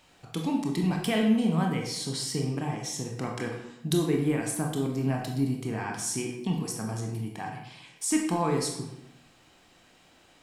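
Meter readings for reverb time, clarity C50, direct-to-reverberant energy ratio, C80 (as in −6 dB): 0.85 s, 4.0 dB, 0.5 dB, 7.0 dB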